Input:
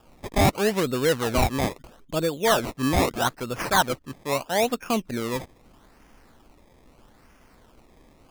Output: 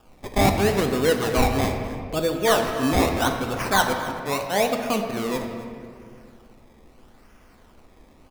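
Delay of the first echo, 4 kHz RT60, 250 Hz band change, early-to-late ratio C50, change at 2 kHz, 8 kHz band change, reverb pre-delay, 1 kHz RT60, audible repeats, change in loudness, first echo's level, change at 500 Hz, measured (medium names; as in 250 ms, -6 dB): 266 ms, 1.2 s, +2.5 dB, 5.0 dB, +2.0 dB, +0.5 dB, 3 ms, 2.0 s, 1, +1.5 dB, -16.5 dB, +2.0 dB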